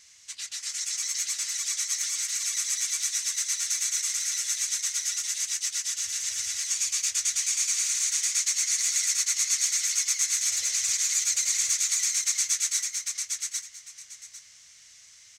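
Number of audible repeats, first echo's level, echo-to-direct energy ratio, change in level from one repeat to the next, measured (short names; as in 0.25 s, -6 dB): 2, -3.5 dB, -3.5 dB, -13.5 dB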